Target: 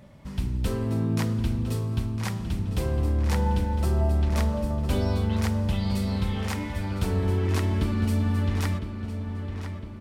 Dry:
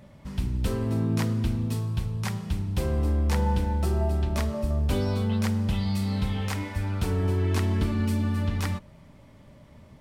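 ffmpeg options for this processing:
-filter_complex "[0:a]asplit=2[a][b];[b]adelay=1007,lowpass=f=4.4k:p=1,volume=-9dB,asplit=2[c][d];[d]adelay=1007,lowpass=f=4.4k:p=1,volume=0.54,asplit=2[e][f];[f]adelay=1007,lowpass=f=4.4k:p=1,volume=0.54,asplit=2[g][h];[h]adelay=1007,lowpass=f=4.4k:p=1,volume=0.54,asplit=2[i][j];[j]adelay=1007,lowpass=f=4.4k:p=1,volume=0.54,asplit=2[k][l];[l]adelay=1007,lowpass=f=4.4k:p=1,volume=0.54[m];[a][c][e][g][i][k][m]amix=inputs=7:normalize=0"

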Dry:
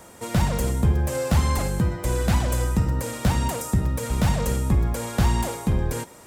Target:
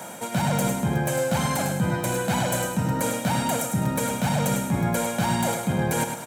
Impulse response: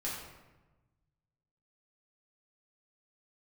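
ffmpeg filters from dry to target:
-af "highpass=f=150:w=0.5412,highpass=f=150:w=1.3066,equalizer=f=5k:w=5.8:g=-7,aecho=1:1:1.3:0.5,areverse,acompressor=threshold=-31dB:ratio=6,areverse,aecho=1:1:103|206|309|412:0.447|0.152|0.0516|0.0176,volume=9dB"

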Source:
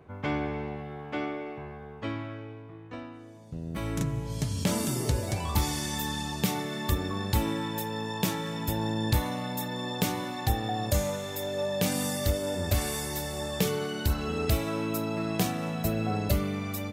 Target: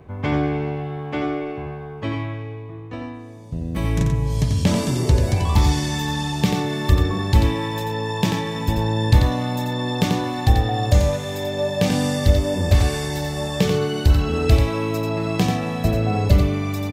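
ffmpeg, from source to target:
-filter_complex "[0:a]lowshelf=f=120:g=9,bandreject=f=1.4k:w=11,acrossover=split=6700[a][b];[b]acompressor=threshold=-51dB:ratio=6[c];[a][c]amix=inputs=2:normalize=0,aecho=1:1:89:0.531,volume=6dB"

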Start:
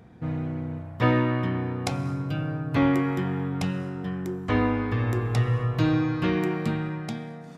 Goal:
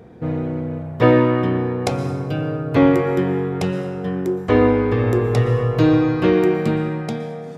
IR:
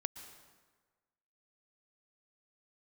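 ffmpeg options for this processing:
-filter_complex "[0:a]equalizer=f=450:t=o:w=1:g=10.5,asplit=2[a][b];[1:a]atrim=start_sample=2205[c];[b][c]afir=irnorm=-1:irlink=0,volume=7.5dB[d];[a][d]amix=inputs=2:normalize=0,volume=-5.5dB"

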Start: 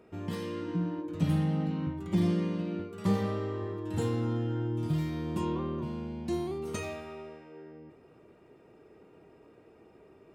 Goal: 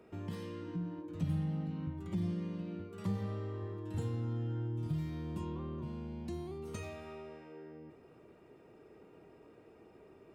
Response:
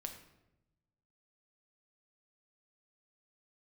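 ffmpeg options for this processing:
-filter_complex "[0:a]acrossover=split=140[a][b];[b]acompressor=threshold=-44dB:ratio=2.5[c];[a][c]amix=inputs=2:normalize=0,volume=-1.5dB"

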